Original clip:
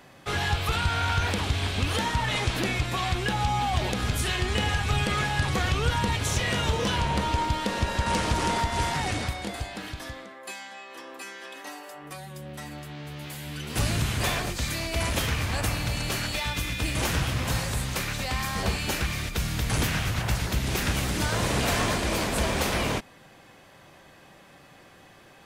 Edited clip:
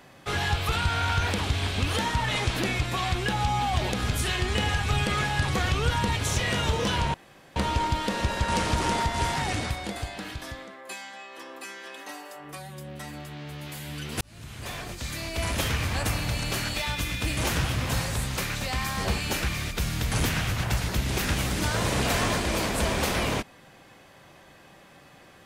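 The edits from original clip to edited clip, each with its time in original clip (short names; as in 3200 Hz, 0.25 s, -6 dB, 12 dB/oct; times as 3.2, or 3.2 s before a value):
7.14 insert room tone 0.42 s
13.79–15.26 fade in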